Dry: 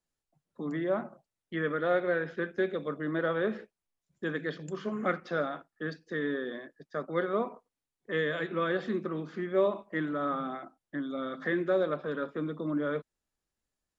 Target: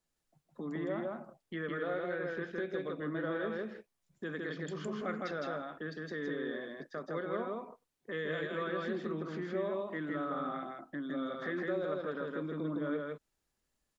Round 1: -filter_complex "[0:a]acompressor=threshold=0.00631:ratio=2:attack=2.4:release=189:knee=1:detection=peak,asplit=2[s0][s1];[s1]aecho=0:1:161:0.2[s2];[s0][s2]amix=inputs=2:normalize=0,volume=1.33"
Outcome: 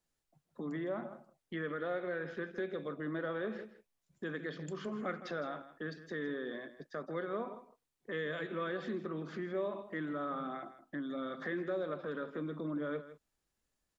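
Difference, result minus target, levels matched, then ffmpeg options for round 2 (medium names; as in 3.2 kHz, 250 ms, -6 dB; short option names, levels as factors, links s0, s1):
echo-to-direct -12 dB
-filter_complex "[0:a]acompressor=threshold=0.00631:ratio=2:attack=2.4:release=189:knee=1:detection=peak,asplit=2[s0][s1];[s1]aecho=0:1:161:0.794[s2];[s0][s2]amix=inputs=2:normalize=0,volume=1.33"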